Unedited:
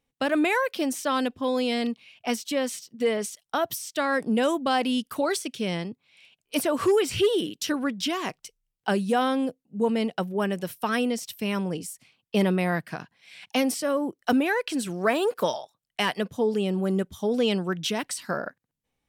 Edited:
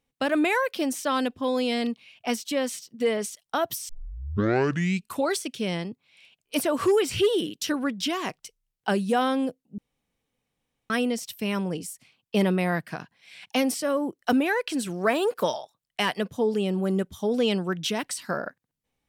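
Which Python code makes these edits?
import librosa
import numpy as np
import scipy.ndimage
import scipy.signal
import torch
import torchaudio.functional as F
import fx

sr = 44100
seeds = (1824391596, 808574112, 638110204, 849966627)

y = fx.edit(x, sr, fx.tape_start(start_s=3.89, length_s=1.37),
    fx.room_tone_fill(start_s=9.78, length_s=1.12), tone=tone)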